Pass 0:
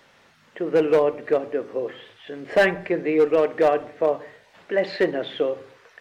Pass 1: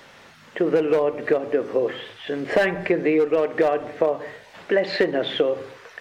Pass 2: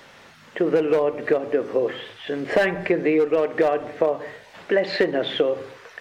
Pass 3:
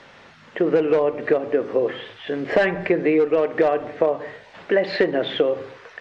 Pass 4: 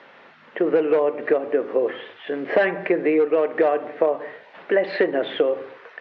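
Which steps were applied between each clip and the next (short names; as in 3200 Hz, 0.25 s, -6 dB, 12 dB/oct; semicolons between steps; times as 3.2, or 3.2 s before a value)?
compressor 10:1, threshold -24 dBFS, peak gain reduction 11 dB; gain +8 dB
nothing audible
air absorption 94 m; gain +1.5 dB
BPF 250–2900 Hz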